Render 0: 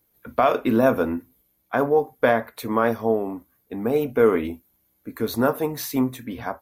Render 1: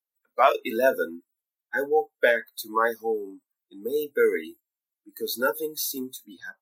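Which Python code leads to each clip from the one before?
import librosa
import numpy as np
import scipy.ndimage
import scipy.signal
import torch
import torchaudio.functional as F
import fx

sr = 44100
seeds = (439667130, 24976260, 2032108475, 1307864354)

y = scipy.signal.sosfilt(scipy.signal.butter(2, 640.0, 'highpass', fs=sr, output='sos'), x)
y = fx.noise_reduce_blind(y, sr, reduce_db=29)
y = fx.notch(y, sr, hz=5000.0, q=26.0)
y = y * librosa.db_to_amplitude(3.0)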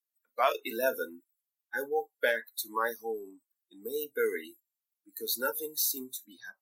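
y = fx.high_shelf(x, sr, hz=3200.0, db=10.0)
y = fx.wow_flutter(y, sr, seeds[0], rate_hz=2.1, depth_cents=18.0)
y = fx.low_shelf(y, sr, hz=85.0, db=-9.0)
y = y * librosa.db_to_amplitude(-8.5)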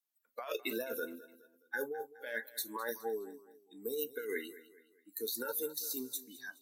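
y = fx.over_compress(x, sr, threshold_db=-34.0, ratio=-1.0)
y = fx.echo_feedback(y, sr, ms=209, feedback_pct=41, wet_db=-17)
y = y * librosa.db_to_amplitude(-3.5)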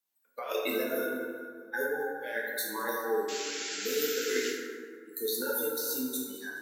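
y = fx.spec_paint(x, sr, seeds[1], shape='noise', start_s=3.28, length_s=1.23, low_hz=1300.0, high_hz=7700.0, level_db=-43.0)
y = fx.rev_plate(y, sr, seeds[2], rt60_s=2.0, hf_ratio=0.4, predelay_ms=0, drr_db=-3.5)
y = y * librosa.db_to_amplitude(2.0)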